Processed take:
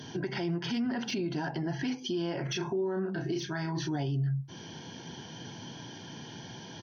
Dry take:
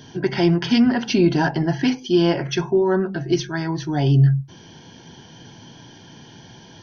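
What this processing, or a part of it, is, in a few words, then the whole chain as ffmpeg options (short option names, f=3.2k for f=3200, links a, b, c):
podcast mastering chain: -filter_complex "[0:a]asplit=3[a][b][c];[a]afade=t=out:st=2.49:d=0.02[d];[b]asplit=2[e][f];[f]adelay=32,volume=-3.5dB[g];[e][g]amix=inputs=2:normalize=0,afade=t=in:st=2.49:d=0.02,afade=t=out:st=3.94:d=0.02[h];[c]afade=t=in:st=3.94:d=0.02[i];[d][h][i]amix=inputs=3:normalize=0,highpass=97,deesser=0.6,acompressor=threshold=-27dB:ratio=4,alimiter=level_in=0.5dB:limit=-24dB:level=0:latency=1:release=33,volume=-0.5dB" -ar 48000 -c:a libmp3lame -b:a 96k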